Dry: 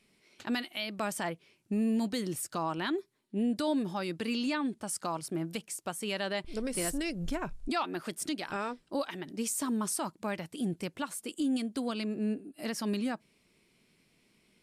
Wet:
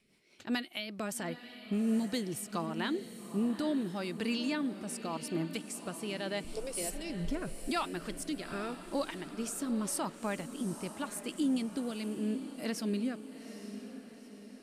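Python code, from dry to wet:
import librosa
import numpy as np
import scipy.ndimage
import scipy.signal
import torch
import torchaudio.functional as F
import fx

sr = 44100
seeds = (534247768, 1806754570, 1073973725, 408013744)

y = fx.fixed_phaser(x, sr, hz=550.0, stages=4, at=(6.48, 7.1))
y = fx.rotary_switch(y, sr, hz=5.0, then_hz=0.85, switch_at_s=2.42)
y = fx.echo_diffused(y, sr, ms=852, feedback_pct=50, wet_db=-11.0)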